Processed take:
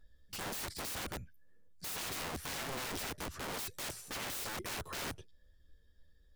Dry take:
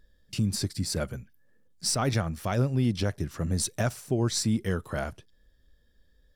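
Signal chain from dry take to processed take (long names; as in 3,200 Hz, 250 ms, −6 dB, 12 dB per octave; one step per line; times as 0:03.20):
multi-voice chorus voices 6, 0.45 Hz, delay 12 ms, depth 1.7 ms
wrap-around overflow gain 34 dB
level −1.5 dB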